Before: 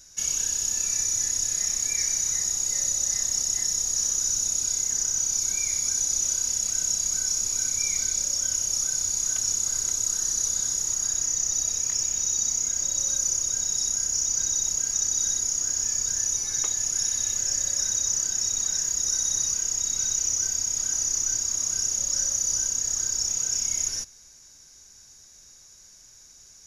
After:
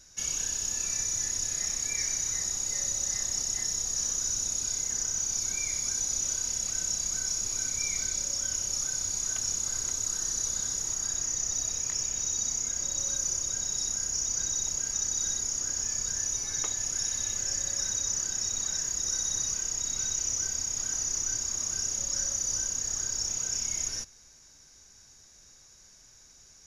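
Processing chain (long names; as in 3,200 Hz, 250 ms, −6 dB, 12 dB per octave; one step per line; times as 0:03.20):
high-shelf EQ 6,100 Hz −9.5 dB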